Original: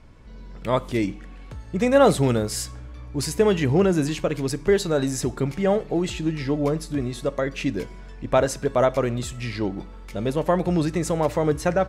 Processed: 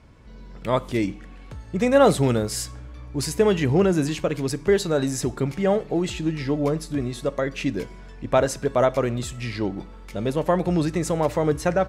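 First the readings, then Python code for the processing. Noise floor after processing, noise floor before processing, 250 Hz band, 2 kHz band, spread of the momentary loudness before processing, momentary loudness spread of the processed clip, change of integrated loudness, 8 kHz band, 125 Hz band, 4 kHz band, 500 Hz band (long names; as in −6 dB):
−42 dBFS, −40 dBFS, 0.0 dB, 0.0 dB, 13 LU, 13 LU, 0.0 dB, 0.0 dB, 0.0 dB, 0.0 dB, 0.0 dB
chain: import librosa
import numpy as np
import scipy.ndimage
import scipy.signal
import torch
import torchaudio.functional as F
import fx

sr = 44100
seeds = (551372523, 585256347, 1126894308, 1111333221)

y = scipy.signal.sosfilt(scipy.signal.butter(2, 40.0, 'highpass', fs=sr, output='sos'), x)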